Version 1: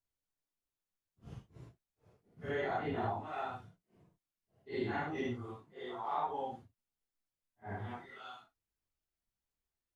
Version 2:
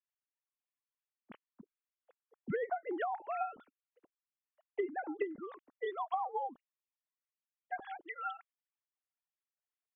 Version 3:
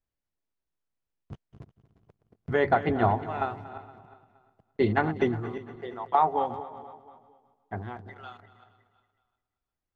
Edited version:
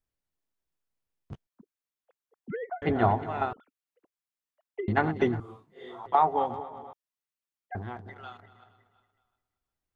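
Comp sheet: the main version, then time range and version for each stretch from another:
3
1.47–2.82 s: from 2
3.53–4.88 s: from 2
5.40–6.06 s: from 1
6.93–7.75 s: from 2

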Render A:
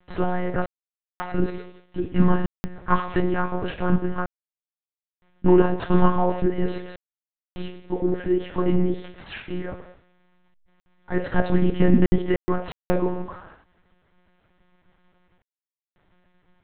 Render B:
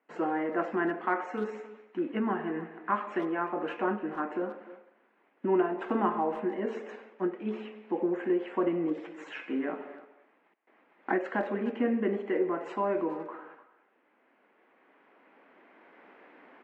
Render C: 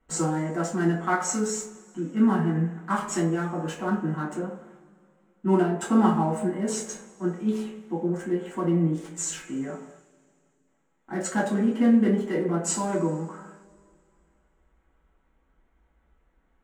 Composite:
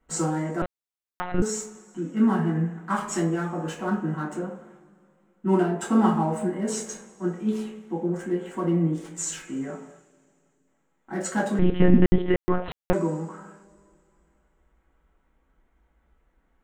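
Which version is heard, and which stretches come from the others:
C
0.62–1.42 s: from A
11.59–12.93 s: from A
not used: B

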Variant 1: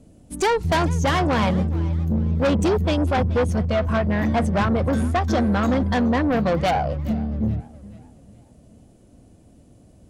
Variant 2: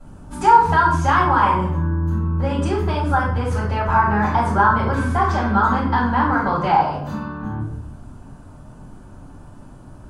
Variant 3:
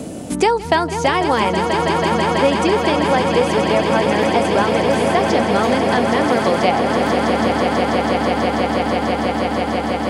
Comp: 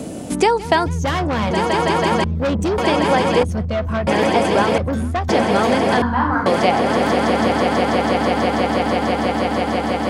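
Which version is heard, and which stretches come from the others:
3
0.86–1.51 s: from 1
2.24–2.78 s: from 1
3.43–4.07 s: from 1
4.78–5.29 s: from 1
6.02–6.46 s: from 2

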